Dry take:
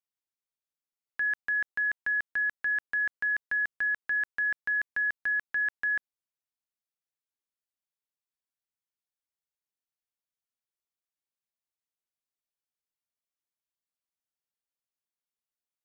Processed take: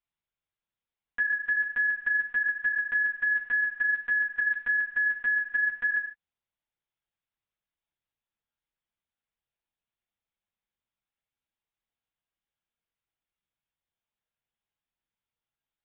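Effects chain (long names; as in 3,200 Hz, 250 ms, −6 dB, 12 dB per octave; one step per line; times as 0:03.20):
linear-prediction vocoder at 8 kHz pitch kept
reverb whose tail is shaped and stops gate 180 ms falling, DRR 5 dB
downward compressor 3 to 1, threshold −29 dBFS, peak gain reduction 6 dB
level +4 dB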